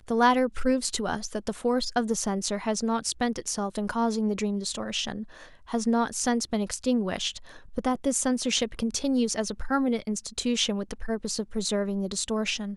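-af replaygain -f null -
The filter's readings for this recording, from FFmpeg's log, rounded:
track_gain = +7.9 dB
track_peak = 0.204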